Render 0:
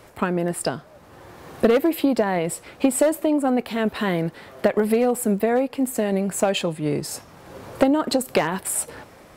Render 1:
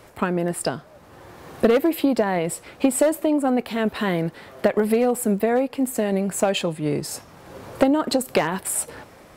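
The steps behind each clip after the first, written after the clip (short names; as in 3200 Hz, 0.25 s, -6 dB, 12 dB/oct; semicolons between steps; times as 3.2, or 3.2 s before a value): nothing audible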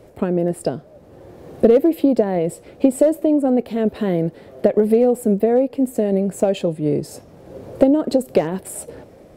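resonant low shelf 760 Hz +10 dB, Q 1.5; gain -7 dB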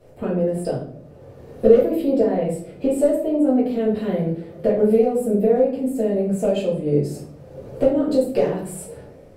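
shoebox room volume 70 m³, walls mixed, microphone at 1.8 m; gain -11.5 dB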